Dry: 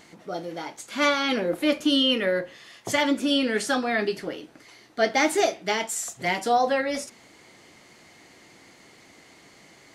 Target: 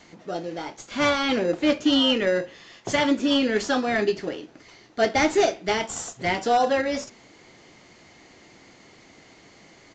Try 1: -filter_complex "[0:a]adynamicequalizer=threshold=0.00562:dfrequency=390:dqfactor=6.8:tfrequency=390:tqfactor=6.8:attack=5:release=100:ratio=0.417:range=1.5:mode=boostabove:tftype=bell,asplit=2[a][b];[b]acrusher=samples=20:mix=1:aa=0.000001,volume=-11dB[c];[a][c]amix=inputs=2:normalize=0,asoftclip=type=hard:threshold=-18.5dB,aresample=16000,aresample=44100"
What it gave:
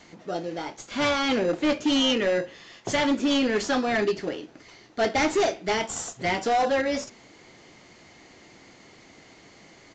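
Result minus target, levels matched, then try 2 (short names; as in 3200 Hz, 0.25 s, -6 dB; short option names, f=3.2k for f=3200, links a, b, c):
hard clip: distortion +12 dB
-filter_complex "[0:a]adynamicequalizer=threshold=0.00562:dfrequency=390:dqfactor=6.8:tfrequency=390:tqfactor=6.8:attack=5:release=100:ratio=0.417:range=1.5:mode=boostabove:tftype=bell,asplit=2[a][b];[b]acrusher=samples=20:mix=1:aa=0.000001,volume=-11dB[c];[a][c]amix=inputs=2:normalize=0,asoftclip=type=hard:threshold=-12.5dB,aresample=16000,aresample=44100"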